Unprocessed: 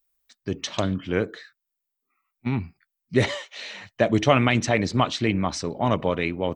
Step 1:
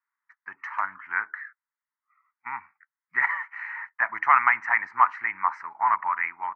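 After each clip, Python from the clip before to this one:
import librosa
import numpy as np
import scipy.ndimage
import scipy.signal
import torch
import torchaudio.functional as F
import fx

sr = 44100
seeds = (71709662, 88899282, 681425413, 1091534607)

y = scipy.signal.sosfilt(scipy.signal.ellip(3, 1.0, 40, [910.0, 2000.0], 'bandpass', fs=sr, output='sos'), x)
y = y * librosa.db_to_amplitude(8.5)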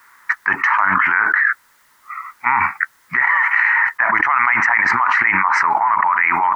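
y = fx.env_flatten(x, sr, amount_pct=100)
y = y * librosa.db_to_amplitude(-1.5)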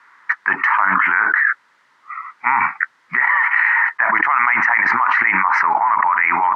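y = fx.bandpass_edges(x, sr, low_hz=160.0, high_hz=3700.0)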